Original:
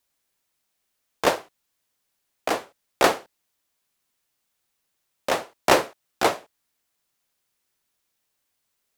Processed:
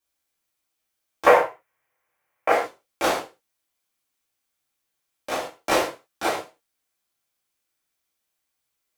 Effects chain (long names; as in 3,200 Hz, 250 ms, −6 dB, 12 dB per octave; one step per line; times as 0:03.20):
0:01.26–0:02.52: octave-band graphic EQ 125/250/500/1,000/2,000/4,000/8,000 Hz +7/−4/+10/+9/+12/−9/−4 dB
reverb whose tail is shaped and stops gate 160 ms falling, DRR −6.5 dB
level −10 dB